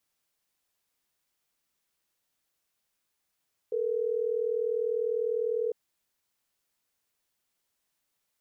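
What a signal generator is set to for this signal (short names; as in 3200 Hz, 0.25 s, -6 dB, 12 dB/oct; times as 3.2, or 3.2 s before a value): call progress tone ringback tone, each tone -29 dBFS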